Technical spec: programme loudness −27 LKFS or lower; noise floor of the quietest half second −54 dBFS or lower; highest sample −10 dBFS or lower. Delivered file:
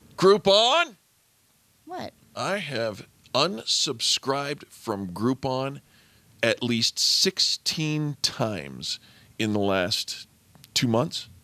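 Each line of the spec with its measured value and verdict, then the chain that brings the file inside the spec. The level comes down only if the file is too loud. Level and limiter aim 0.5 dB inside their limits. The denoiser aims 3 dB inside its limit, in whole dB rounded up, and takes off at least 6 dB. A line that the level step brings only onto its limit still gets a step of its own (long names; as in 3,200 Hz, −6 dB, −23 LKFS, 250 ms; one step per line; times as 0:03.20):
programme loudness −24.0 LKFS: out of spec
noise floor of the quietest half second −64 dBFS: in spec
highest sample −4.5 dBFS: out of spec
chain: level −3.5 dB
brickwall limiter −10.5 dBFS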